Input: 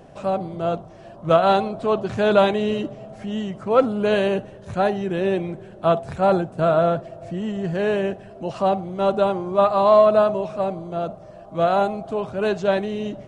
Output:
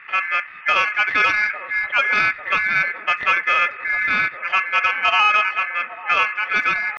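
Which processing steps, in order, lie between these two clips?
level-controlled noise filter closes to 1.3 kHz, open at -12.5 dBFS; bass shelf 180 Hz +8 dB; hum notches 60/120/180/240/300/360/420/480 Hz; ring modulator 1.9 kHz; in parallel at -4.5 dB: saturation -15 dBFS, distortion -12 dB; on the sum: tempo 1.9×; distance through air 76 m; on a send: feedback echo behind a band-pass 848 ms, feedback 66%, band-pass 510 Hz, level -13 dB; on the sum: loudness maximiser +8 dB; trim -6 dB

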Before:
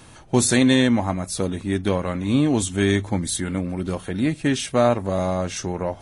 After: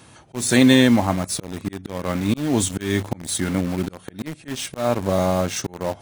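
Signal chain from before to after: slow attack 271 ms; high-pass 76 Hz 12 dB/octave; in parallel at -4 dB: bit crusher 5-bit; on the sum: trim -1 dB

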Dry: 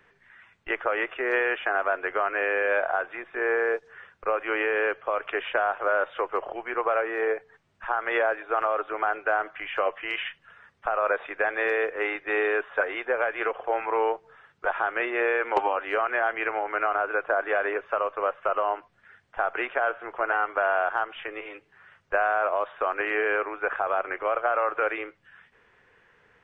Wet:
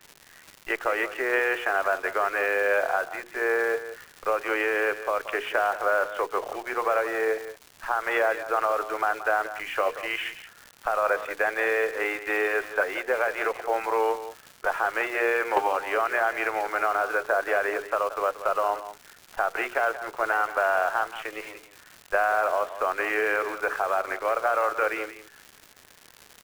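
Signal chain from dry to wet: hum notches 60/120/180/240/300/360/420/480 Hz; in parallel at -7.5 dB: bit crusher 6-bit; on the sum: crackle 220 per s -31 dBFS; delay 178 ms -13 dB; trim -2.5 dB

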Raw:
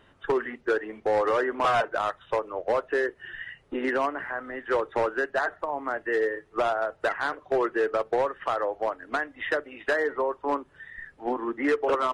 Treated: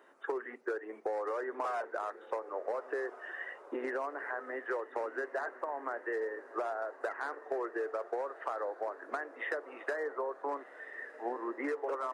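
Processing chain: high-pass 330 Hz 24 dB/octave; peaking EQ 3.2 kHz -14 dB 0.86 oct; compression 5:1, threshold -34 dBFS, peak gain reduction 12 dB; echo that smears into a reverb 1417 ms, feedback 41%, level -15 dB

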